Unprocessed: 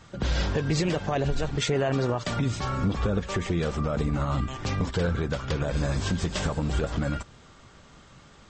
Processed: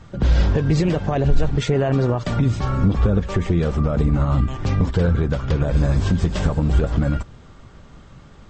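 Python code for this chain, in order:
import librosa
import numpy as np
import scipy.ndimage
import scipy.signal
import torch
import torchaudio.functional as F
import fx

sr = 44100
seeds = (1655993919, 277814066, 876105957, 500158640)

y = fx.tilt_eq(x, sr, slope=-2.0)
y = y * librosa.db_to_amplitude(3.0)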